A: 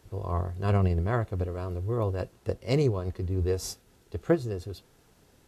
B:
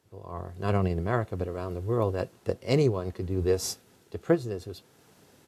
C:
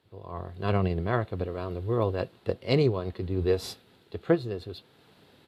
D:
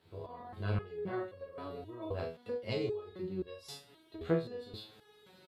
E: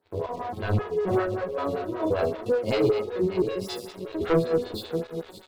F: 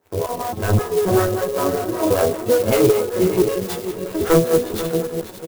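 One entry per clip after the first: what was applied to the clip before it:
high-pass 120 Hz 12 dB/octave; level rider gain up to 13 dB; trim -8.5 dB
resonant high shelf 4.9 kHz -7.5 dB, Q 3
doubling 41 ms -5 dB; compression 2:1, threshold -40 dBFS, peak gain reduction 12.5 dB; resonator arpeggio 3.8 Hz 82–550 Hz; trim +10 dB
backward echo that repeats 317 ms, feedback 58%, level -11 dB; waveshaping leveller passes 3; lamp-driven phase shifter 5.2 Hz; trim +5.5 dB
delay 491 ms -11.5 dB; sampling jitter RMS 0.055 ms; trim +7.5 dB

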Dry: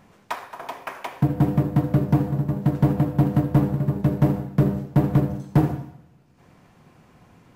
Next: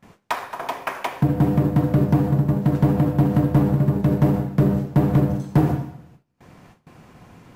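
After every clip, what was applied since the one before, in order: gate with hold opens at -44 dBFS; peak limiter -15.5 dBFS, peak gain reduction 5.5 dB; trim +6 dB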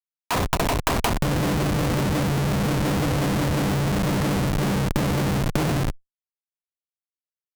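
Schmitt trigger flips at -29 dBFS; Chebyshev shaper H 3 -10 dB, 5 -18 dB, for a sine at -14 dBFS; trim +4.5 dB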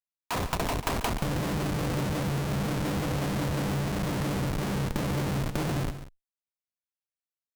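multi-tap echo 140/184 ms -12/-17.5 dB; trim -7 dB

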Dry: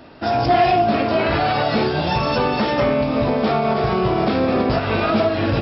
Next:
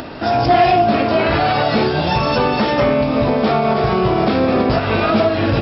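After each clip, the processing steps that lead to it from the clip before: upward compressor, threshold -24 dBFS; trim +3 dB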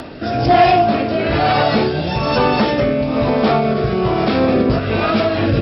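rotary cabinet horn 1.1 Hz; trim +2 dB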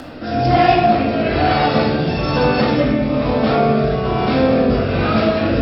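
simulated room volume 640 m³, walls mixed, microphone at 2.1 m; trim -5.5 dB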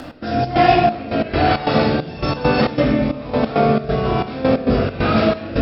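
trance gate "x.xx.xxx.." 135 bpm -12 dB

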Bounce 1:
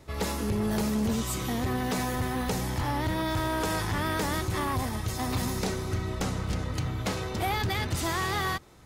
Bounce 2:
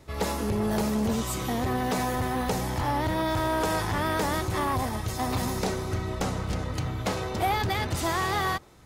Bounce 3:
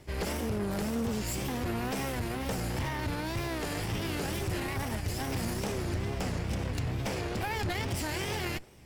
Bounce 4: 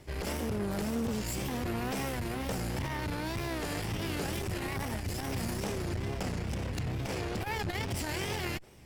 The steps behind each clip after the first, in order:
dynamic bell 700 Hz, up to +5 dB, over -41 dBFS, Q 0.87
comb filter that takes the minimum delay 0.38 ms; peak limiter -25 dBFS, peak gain reduction 7.5 dB; wow and flutter 140 cents
transformer saturation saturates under 130 Hz

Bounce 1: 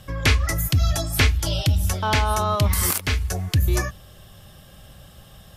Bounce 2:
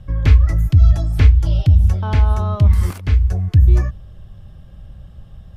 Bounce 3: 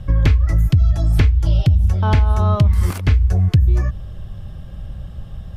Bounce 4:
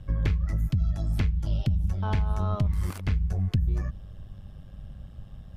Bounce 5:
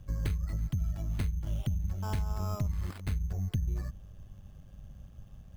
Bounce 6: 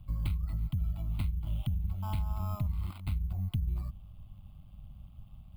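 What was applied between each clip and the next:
RIAA curve playback; trim -5.5 dB
compression 12:1, threshold -17 dBFS, peak gain reduction 13 dB; trim +7 dB
AM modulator 100 Hz, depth 40%; trim -9 dB
sample-and-hold 7×; trim -6.5 dB
static phaser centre 1.7 kHz, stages 6

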